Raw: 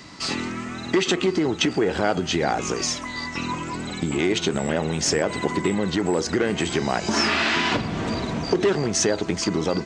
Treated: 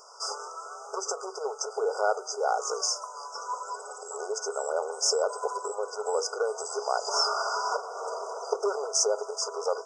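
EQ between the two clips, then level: brick-wall FIR high-pass 400 Hz; brick-wall FIR band-stop 1.5–4.8 kHz; peaking EQ 3.2 kHz +8 dB 0.61 oct; -2.5 dB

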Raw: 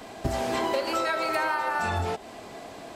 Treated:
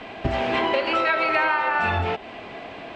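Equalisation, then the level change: resonant low-pass 2.7 kHz, resonance Q 2.3; +3.5 dB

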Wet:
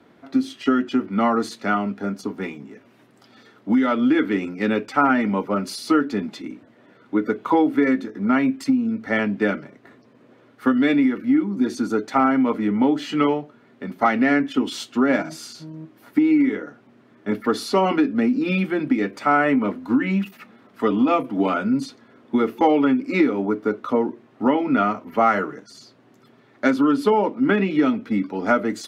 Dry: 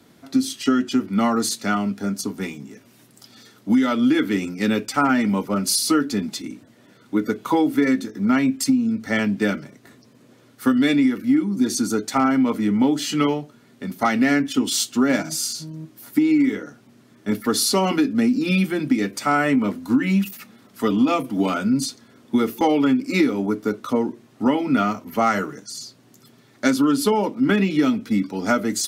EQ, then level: tone controls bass -8 dB, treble -11 dB; treble shelf 4 kHz -10.5 dB; +3.0 dB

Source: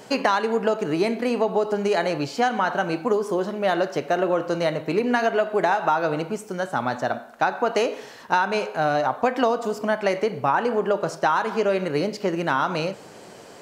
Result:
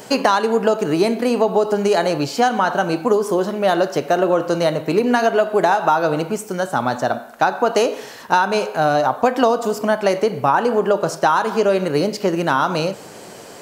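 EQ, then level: treble shelf 9.2 kHz +10 dB; dynamic bell 2.1 kHz, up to -6 dB, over -40 dBFS, Q 2.1; +5.5 dB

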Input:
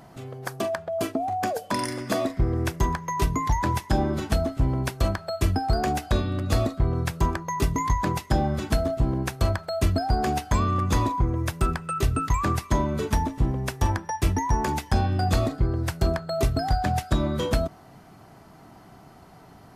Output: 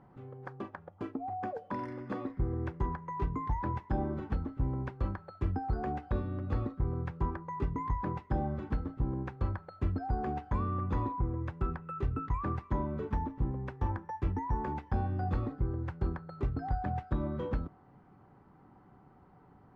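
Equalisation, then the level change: Butterworth band-stop 660 Hz, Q 6.2; low-pass 1.4 kHz 12 dB/octave; -9.0 dB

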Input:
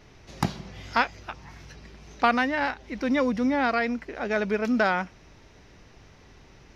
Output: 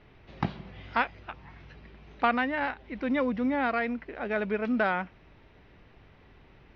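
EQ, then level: low-pass 3.5 kHz 24 dB/octave; -3.5 dB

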